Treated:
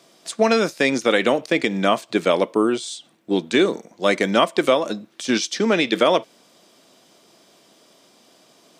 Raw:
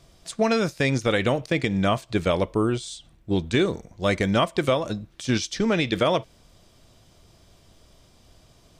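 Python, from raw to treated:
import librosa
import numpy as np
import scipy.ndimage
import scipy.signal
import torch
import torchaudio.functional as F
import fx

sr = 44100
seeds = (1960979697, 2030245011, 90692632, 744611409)

y = scipy.signal.sosfilt(scipy.signal.butter(4, 220.0, 'highpass', fs=sr, output='sos'), x)
y = y * librosa.db_to_amplitude(5.0)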